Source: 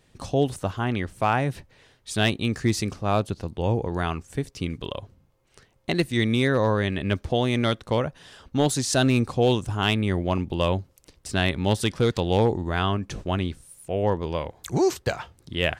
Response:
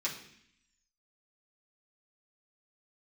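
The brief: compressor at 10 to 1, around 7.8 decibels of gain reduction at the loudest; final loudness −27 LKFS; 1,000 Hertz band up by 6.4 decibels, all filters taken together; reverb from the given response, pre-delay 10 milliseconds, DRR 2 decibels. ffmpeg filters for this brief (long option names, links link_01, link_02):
-filter_complex "[0:a]equalizer=frequency=1000:width_type=o:gain=8.5,acompressor=threshold=-21dB:ratio=10,asplit=2[link_01][link_02];[1:a]atrim=start_sample=2205,adelay=10[link_03];[link_02][link_03]afir=irnorm=-1:irlink=0,volume=-6dB[link_04];[link_01][link_04]amix=inputs=2:normalize=0,volume=-0.5dB"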